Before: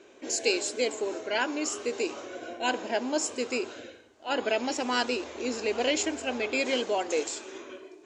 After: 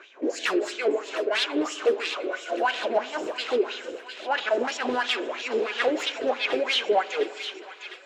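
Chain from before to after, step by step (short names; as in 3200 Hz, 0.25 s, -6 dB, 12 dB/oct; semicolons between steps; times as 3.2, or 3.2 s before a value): ending faded out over 1.59 s; tremolo 4.3 Hz, depth 56%; sine folder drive 16 dB, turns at -11.5 dBFS; wah 3 Hz 370–3500 Hz, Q 3.6; on a send: thin delay 0.706 s, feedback 68%, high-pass 1600 Hz, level -10 dB; on the sum: spring tank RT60 2 s, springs 48 ms, chirp 50 ms, DRR 17 dB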